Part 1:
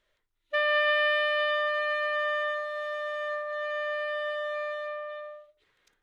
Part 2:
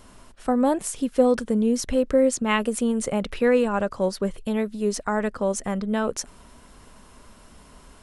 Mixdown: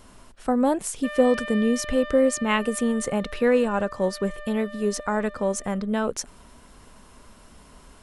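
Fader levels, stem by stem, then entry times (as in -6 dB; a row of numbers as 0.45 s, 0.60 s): -9.5 dB, -0.5 dB; 0.50 s, 0.00 s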